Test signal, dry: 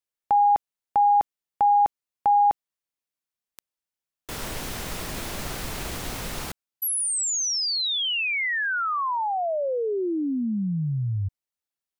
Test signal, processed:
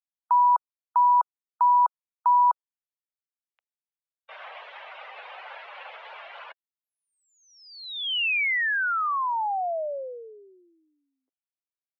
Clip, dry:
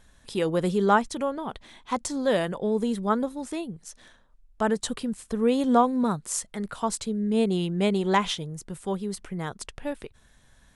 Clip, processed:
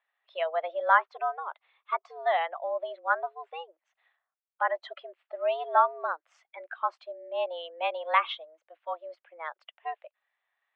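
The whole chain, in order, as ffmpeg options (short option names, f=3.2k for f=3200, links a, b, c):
-af "aemphasis=mode=production:type=bsi,afftdn=nr=16:nf=-34,highpass=f=420:t=q:w=0.5412,highpass=f=420:t=q:w=1.307,lowpass=f=2.8k:t=q:w=0.5176,lowpass=f=2.8k:t=q:w=0.7071,lowpass=f=2.8k:t=q:w=1.932,afreqshift=160"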